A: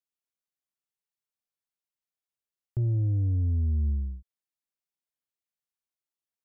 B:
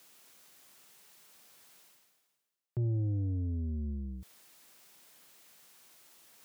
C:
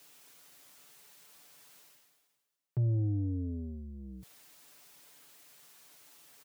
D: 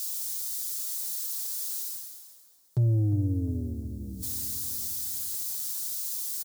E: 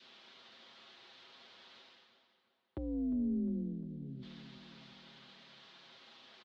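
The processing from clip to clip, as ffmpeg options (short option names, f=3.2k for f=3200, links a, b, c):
-af "highpass=140,areverse,acompressor=mode=upward:threshold=-34dB:ratio=2.5,areverse"
-af "aecho=1:1:6.9:0.62"
-filter_complex "[0:a]aexciter=amount=7.9:drive=4.7:freq=3.8k,asplit=2[a][b];[b]adelay=354,lowpass=f=2.2k:p=1,volume=-12dB,asplit=2[c][d];[d]adelay=354,lowpass=f=2.2k:p=1,volume=0.54,asplit=2[e][f];[f]adelay=354,lowpass=f=2.2k:p=1,volume=0.54,asplit=2[g][h];[h]adelay=354,lowpass=f=2.2k:p=1,volume=0.54,asplit=2[i][j];[j]adelay=354,lowpass=f=2.2k:p=1,volume=0.54,asplit=2[k][l];[l]adelay=354,lowpass=f=2.2k:p=1,volume=0.54[m];[a][c][e][g][i][k][m]amix=inputs=7:normalize=0,volume=5.5dB"
-af "highpass=f=220:t=q:w=0.5412,highpass=f=220:t=q:w=1.307,lowpass=f=3.3k:t=q:w=0.5176,lowpass=f=3.3k:t=q:w=0.7071,lowpass=f=3.3k:t=q:w=1.932,afreqshift=-57,adynamicequalizer=threshold=0.00112:dfrequency=790:dqfactor=1.3:tfrequency=790:tqfactor=1.3:attack=5:release=100:ratio=0.375:range=3:mode=cutabove:tftype=bell"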